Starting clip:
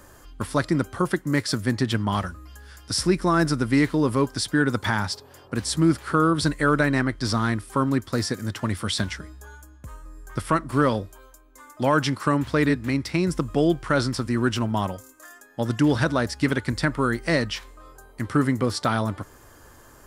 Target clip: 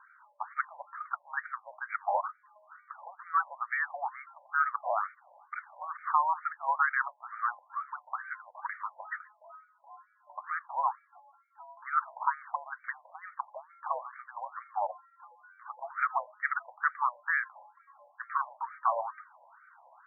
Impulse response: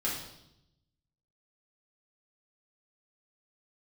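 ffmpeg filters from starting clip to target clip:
-af "highpass=f=210:t=q:w=0.5412,highpass=f=210:t=q:w=1.307,lowpass=f=2.7k:t=q:w=0.5176,lowpass=f=2.7k:t=q:w=0.7071,lowpass=f=2.7k:t=q:w=1.932,afreqshift=-200,afftfilt=real='re*between(b*sr/1024,720*pow(1700/720,0.5+0.5*sin(2*PI*2.2*pts/sr))/1.41,720*pow(1700/720,0.5+0.5*sin(2*PI*2.2*pts/sr))*1.41)':imag='im*between(b*sr/1024,720*pow(1700/720,0.5+0.5*sin(2*PI*2.2*pts/sr))/1.41,720*pow(1700/720,0.5+0.5*sin(2*PI*2.2*pts/sr))*1.41)':win_size=1024:overlap=0.75"

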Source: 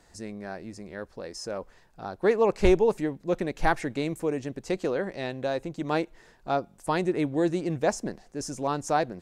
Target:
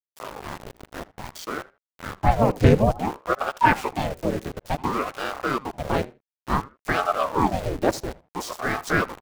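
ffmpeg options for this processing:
-filter_complex "[0:a]asplit=4[a][b][c][d];[b]asetrate=33038,aresample=44100,atempo=1.33484,volume=0dB[e];[c]asetrate=35002,aresample=44100,atempo=1.25992,volume=-9dB[f];[d]asetrate=66075,aresample=44100,atempo=0.66742,volume=-17dB[g];[a][e][f][g]amix=inputs=4:normalize=0,aeval=exprs='val(0)*gte(abs(val(0)),0.0237)':c=same,asplit=2[h][i];[i]adelay=79,lowpass=f=3.3k:p=1,volume=-19.5dB,asplit=2[j][k];[k]adelay=79,lowpass=f=3.3k:p=1,volume=0.19[l];[j][l]amix=inputs=2:normalize=0[m];[h][m]amix=inputs=2:normalize=0,aeval=exprs='val(0)*sin(2*PI*550*n/s+550*0.8/0.57*sin(2*PI*0.57*n/s))':c=same,volume=2.5dB"

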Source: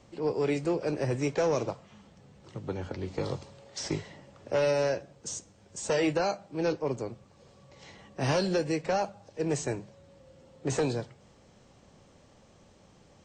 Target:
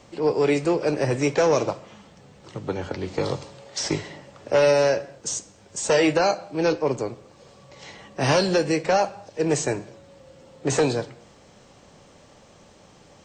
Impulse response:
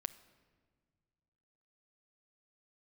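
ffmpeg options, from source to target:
-filter_complex "[0:a]asplit=2[a][b];[1:a]atrim=start_sample=2205,afade=t=out:st=0.3:d=0.01,atrim=end_sample=13671,lowshelf=f=220:g=-10[c];[b][c]afir=irnorm=-1:irlink=0,volume=11dB[d];[a][d]amix=inputs=2:normalize=0,volume=-2.5dB"

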